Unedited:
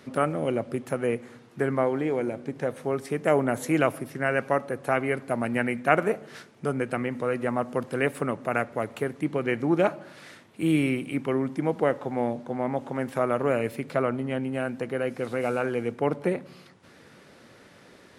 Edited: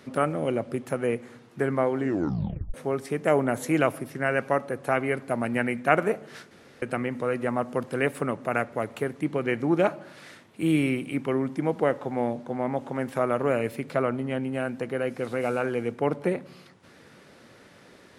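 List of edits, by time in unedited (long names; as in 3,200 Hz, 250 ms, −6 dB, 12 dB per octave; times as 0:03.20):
0:01.96: tape stop 0.78 s
0:06.51–0:06.82: fill with room tone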